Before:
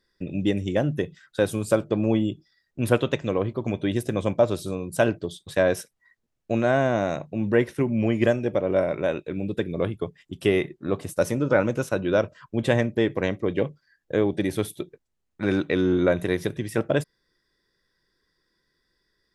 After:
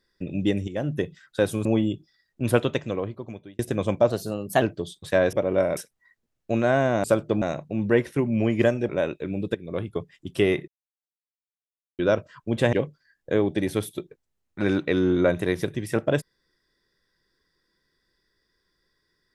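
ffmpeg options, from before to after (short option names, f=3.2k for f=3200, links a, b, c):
-filter_complex "[0:a]asplit=15[a][b][c][d][e][f][g][h][i][j][k][l][m][n][o];[a]atrim=end=0.68,asetpts=PTS-STARTPTS,afade=t=out:st=0.676:d=0.004:c=hsin:silence=0.251189[p];[b]atrim=start=0.68:end=1.652,asetpts=PTS-STARTPTS,afade=t=in:d=0.3:silence=0.251189[q];[c]atrim=start=2.028:end=3.97,asetpts=PTS-STARTPTS,afade=t=out:st=0.992:d=0.95[r];[d]atrim=start=3.97:end=4.484,asetpts=PTS-STARTPTS,afade=t=in:d=0.004:c=hsin[s];[e]atrim=start=4.48:end=5.06,asetpts=PTS-STARTPTS,asetrate=49392,aresample=44100,atrim=end_sample=22837,asetpts=PTS-STARTPTS[t];[f]atrim=start=5.056:end=5.772[u];[g]atrim=start=8.508:end=8.952[v];[h]atrim=start=5.768:end=7.042[w];[i]atrim=start=1.648:end=2.032[x];[j]atrim=start=7.038:end=8.512[y];[k]atrim=start=8.948:end=9.61,asetpts=PTS-STARTPTS,afade=t=out:st=0.658:d=0.004:c=hsin:silence=0.211349[z];[l]atrim=start=9.61:end=10.74,asetpts=PTS-STARTPTS,afade=t=in:d=0.41:silence=0.211349,afade=t=out:st=1.126:d=0.004:c=hsin[aa];[m]atrim=start=10.74:end=12.05,asetpts=PTS-STARTPTS,volume=0[ab];[n]atrim=start=12.05:end=12.792,asetpts=PTS-STARTPTS,afade=t=in:d=0.004:c=hsin[ac];[o]atrim=start=13.548[ad];[p][q]concat=n=2:v=0:a=1[ae];[r][s]concat=n=2:v=0:a=1[af];[ae][af]acrossfade=d=0.004:c1=hsin:c2=hsin[ag];[ag][t]acrossfade=d=0.004:c1=hsin:c2=hsin[ah];[ah][u]acrossfade=d=0.004:c1=hsin:c2=hsin[ai];[ai][v]acrossfade=d=0.004:c1=hsin:c2=hsin[aj];[aj][w]acrossfade=d=0.004:c1=hsin:c2=hsin[ak];[ak][x]acrossfade=d=0.004:c1=hsin:c2=hsin[al];[al][y]acrossfade=d=0.004:c1=hsin:c2=hsin[am];[z][aa][ab][ac]concat=n=4:v=0:a=1[an];[am][an]acrossfade=d=0.004:c1=hsin:c2=hsin[ao];[ao][ad]acrossfade=d=0.004:c1=hsin:c2=hsin"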